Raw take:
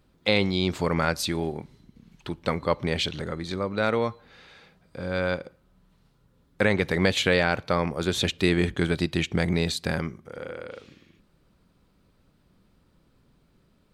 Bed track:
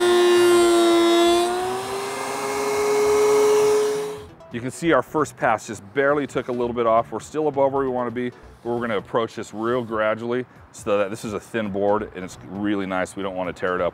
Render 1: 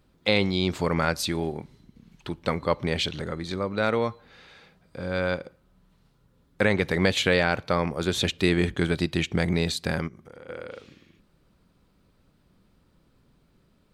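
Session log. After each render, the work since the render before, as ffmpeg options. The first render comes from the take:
-filter_complex "[0:a]asplit=3[a][b][c];[a]afade=t=out:st=10.07:d=0.02[d];[b]acompressor=threshold=-41dB:ratio=6:attack=3.2:release=140:knee=1:detection=peak,afade=t=in:st=10.07:d=0.02,afade=t=out:st=10.48:d=0.02[e];[c]afade=t=in:st=10.48:d=0.02[f];[d][e][f]amix=inputs=3:normalize=0"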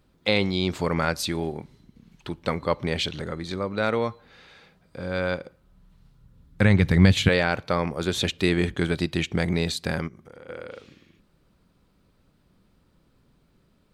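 -filter_complex "[0:a]asettb=1/sr,asplit=3[a][b][c];[a]atrim=end=5.464[d];[b]atrim=start=5.46:end=7.29,asetpts=PTS-STARTPTS,afade=t=in:d=0.004:c=qsin,afade=t=out:st=1.826:d=0.004:c=qsin,asubboost=boost=11:cutoff=190[e];[c]atrim=start=7.286[f];[d][e]acrossfade=d=0.004:c1=hsin:c2=qsin[g];[g][f]acrossfade=d=0.004:c1=qsin:c2=hsin"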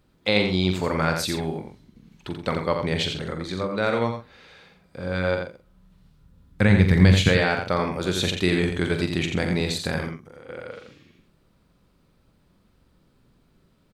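-filter_complex "[0:a]asplit=2[a][b];[b]adelay=44,volume=-9dB[c];[a][c]amix=inputs=2:normalize=0,asplit=2[d][e];[e]aecho=0:1:86:0.501[f];[d][f]amix=inputs=2:normalize=0"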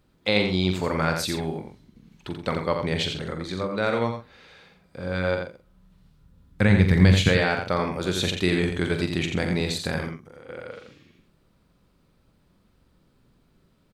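-af "volume=-1dB"

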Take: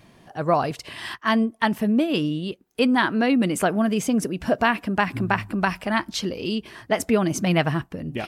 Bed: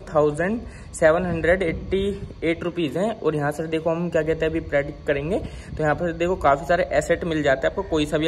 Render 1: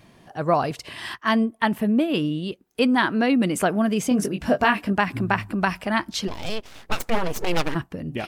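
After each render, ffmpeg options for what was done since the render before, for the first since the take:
-filter_complex "[0:a]asettb=1/sr,asplit=3[a][b][c];[a]atrim=end=1.504[d];[b]atrim=start=1.5:end=2.38,asetpts=PTS-STARTPTS,afade=t=in:d=0.004:c=qsin,afade=t=out:st=0.876:d=0.004:c=qsin,equalizer=f=5.7k:t=o:w=0.77:g=-6.5[e];[c]atrim=start=2.376[f];[d][e]acrossfade=d=0.004:c1=hsin:c2=qsin[g];[g][f]acrossfade=d=0.004:c1=qsin:c2=hsin,asettb=1/sr,asplit=3[h][i][j];[h]atrim=end=4.094[k];[i]atrim=start=4.09:end=4.93,asetpts=PTS-STARTPTS,afade=t=in:d=0.004:c=qsin,afade=t=out:st=0.836:d=0.004:c=qsin,asplit=2[l][m];[m]adelay=20,volume=-5dB[n];[l][n]amix=inputs=2:normalize=0,atrim=end_sample=37044[o];[j]atrim=start=4.926[p];[k][o]acrossfade=d=0.004:c1=hsin:c2=qsin[q];[q][p]acrossfade=d=0.004:c1=qsin:c2=hsin,asplit=3[r][s][t];[r]afade=t=out:st=6.27:d=0.02[u];[s]aeval=exprs='abs(val(0))':c=same,afade=t=in:st=6.27:d=0.02,afade=t=out:st=7.74:d=0.02[v];[t]afade=t=in:st=7.74:d=0.02[w];[u][v][w]amix=inputs=3:normalize=0"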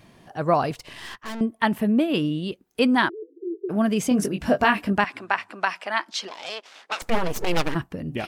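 -filter_complex "[0:a]asettb=1/sr,asplit=3[a][b][c];[a]atrim=end=0.744[d];[b]atrim=start=0.74:end=1.41,asetpts=PTS-STARTPTS,afade=t=in:d=0.004:c=qsin,afade=t=out:st=0.666:d=0.004:c=qsin,aeval=exprs='(tanh(39.8*val(0)+0.75)-tanh(0.75))/39.8':c=same[e];[c]atrim=start=1.406[f];[d][e]acrossfade=d=0.004:c1=hsin:c2=qsin[g];[g][f]acrossfade=d=0.004:c1=qsin:c2=hsin,asplit=3[h][i][j];[h]afade=t=out:st=3.08:d=0.02[k];[i]asuperpass=centerf=380:order=12:qfactor=3.5,afade=t=in:st=3.08:d=0.02,afade=t=out:st=3.69:d=0.02[l];[j]afade=t=in:st=3.69:d=0.02[m];[k][l][m]amix=inputs=3:normalize=0,asettb=1/sr,asplit=3[n][o][p];[n]atrim=end=5.044[q];[o]atrim=start=5.04:end=7.02,asetpts=PTS-STARTPTS,afade=t=in:d=0.004:c=qsin,afade=t=out:st=1.976:d=0.004:c=qsin,highpass=620,lowpass=7.1k[r];[p]atrim=start=7.016[s];[q][r]acrossfade=d=0.004:c1=hsin:c2=qsin[t];[t][s]acrossfade=d=0.004:c1=qsin:c2=hsin"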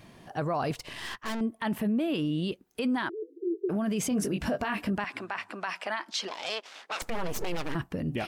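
-af "acompressor=threshold=-21dB:ratio=4,alimiter=limit=-21.5dB:level=0:latency=1:release=19"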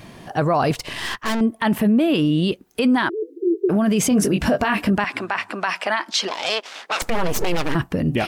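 -af "volume=11dB"

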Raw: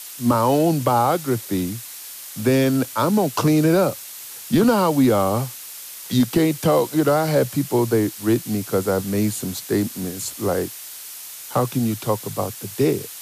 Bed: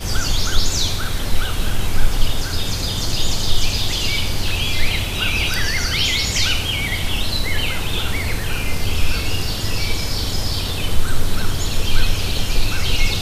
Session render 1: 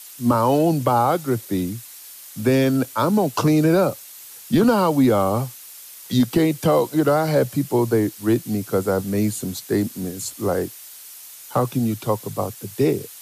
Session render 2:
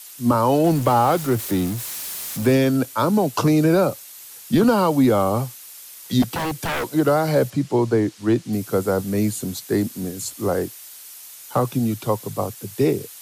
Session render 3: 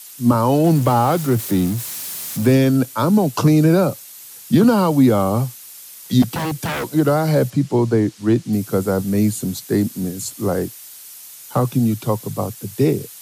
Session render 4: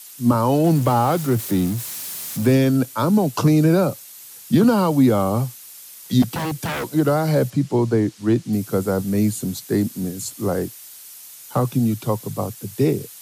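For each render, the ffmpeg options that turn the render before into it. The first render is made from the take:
-af "afftdn=nr=6:nf=-37"
-filter_complex "[0:a]asettb=1/sr,asplit=3[a][b][c];[a]atrim=end=0.644[d];[b]atrim=start=0.64:end=2.57,asetpts=PTS-STARTPTS,afade=t=in:d=0.004:c=qsin,afade=t=out:st=1.926:d=0.004:c=qsin,aeval=exprs='val(0)+0.5*0.0422*sgn(val(0))':c=same[e];[c]atrim=start=2.566[f];[d][e]acrossfade=d=0.004:c1=hsin:c2=qsin[g];[g][f]acrossfade=d=0.004:c1=qsin:c2=hsin,asettb=1/sr,asplit=3[h][i][j];[h]atrim=end=6.224[k];[i]atrim=start=6.22:end=6.93,asetpts=PTS-STARTPTS,afade=t=in:d=0.004:c=qsin,afade=t=out:st=0.706:d=0.004:c=qsin,aeval=exprs='0.112*(abs(mod(val(0)/0.112+3,4)-2)-1)':c=same[l];[j]atrim=start=6.926[m];[k][l]acrossfade=d=0.004:c1=hsin:c2=qsin[n];[n][m]acrossfade=d=0.004:c1=qsin:c2=hsin,asettb=1/sr,asplit=3[o][p][q];[o]atrim=end=7.504[r];[p]atrim=start=7.5:end=8.53,asetpts=PTS-STARTPTS,afade=t=in:d=0.004:c=qsin,afade=t=out:st=1.026:d=0.004:c=qsin,lowpass=6.3k[s];[q]atrim=start=8.526[t];[r][s]acrossfade=d=0.004:c1=hsin:c2=qsin[u];[u][t]acrossfade=d=0.004:c1=qsin:c2=hsin"
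-af "highpass=110,bass=f=250:g=8,treble=f=4k:g=2"
-af "volume=-2dB"

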